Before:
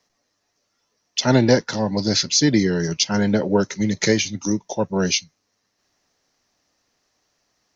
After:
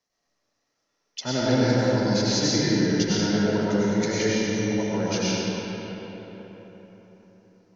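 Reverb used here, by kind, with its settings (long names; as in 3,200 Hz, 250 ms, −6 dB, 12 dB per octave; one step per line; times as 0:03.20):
comb and all-pass reverb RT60 4.4 s, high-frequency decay 0.55×, pre-delay 60 ms, DRR −9 dB
level −12.5 dB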